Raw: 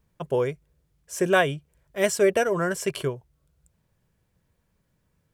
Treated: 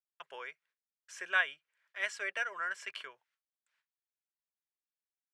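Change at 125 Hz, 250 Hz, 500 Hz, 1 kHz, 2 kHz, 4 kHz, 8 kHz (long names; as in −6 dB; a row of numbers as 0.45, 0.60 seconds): below −40 dB, below −30 dB, −26.0 dB, −12.0 dB, −4.0 dB, −8.5 dB, −18.0 dB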